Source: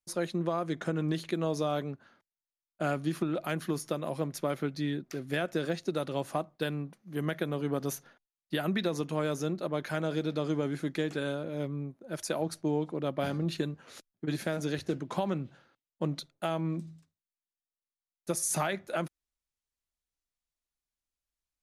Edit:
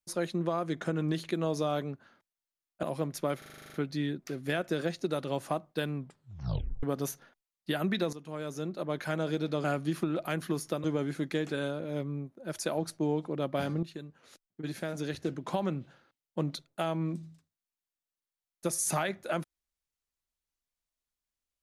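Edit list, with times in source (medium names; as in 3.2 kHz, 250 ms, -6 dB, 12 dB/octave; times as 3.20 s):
2.83–4.03 s: move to 10.48 s
4.58 s: stutter 0.04 s, 10 plays
6.80 s: tape stop 0.87 s
8.97–9.87 s: fade in, from -14 dB
13.47–15.30 s: fade in, from -12.5 dB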